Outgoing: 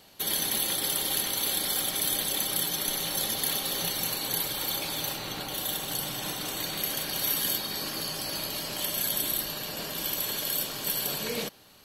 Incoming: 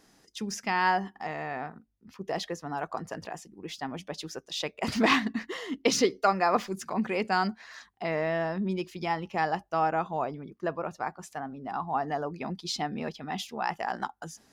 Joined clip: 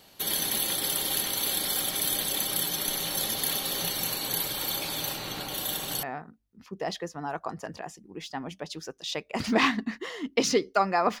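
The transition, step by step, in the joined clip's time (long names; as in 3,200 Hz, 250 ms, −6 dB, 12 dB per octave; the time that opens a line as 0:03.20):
outgoing
0:06.03: continue with incoming from 0:01.51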